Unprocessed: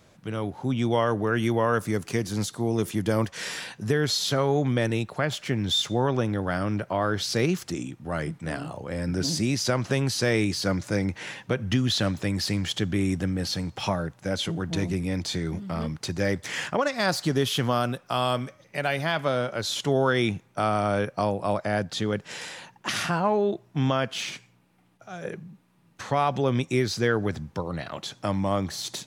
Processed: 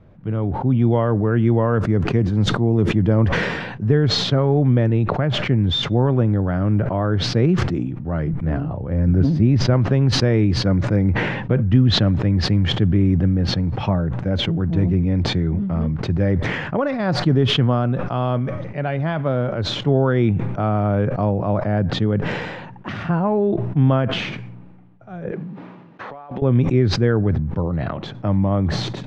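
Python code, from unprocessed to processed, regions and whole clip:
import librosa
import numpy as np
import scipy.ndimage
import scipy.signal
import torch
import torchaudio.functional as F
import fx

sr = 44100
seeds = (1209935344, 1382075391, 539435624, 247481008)

y = fx.chain(x, sr, fx.lowpass(hz=3600.0, slope=6),
    fx.low_shelf(hz=73.0, db=9.0), at=(8.33, 9.74))
y = fx.chain(y, sr, fx.cvsd(bps=64000),
    fx.bandpass_edges(low_hz=330.0, high_hz=5200.0),
    fx.over_compress(threshold_db=-36.0, ratio=-1.0), at=(25.31, 26.42))
y = scipy.signal.sosfilt(scipy.signal.butter(2, 2800.0, 'lowpass', fs=sr, output='sos'), y)
y = fx.tilt_eq(y, sr, slope=-3.5)
y = fx.sustainer(y, sr, db_per_s=36.0)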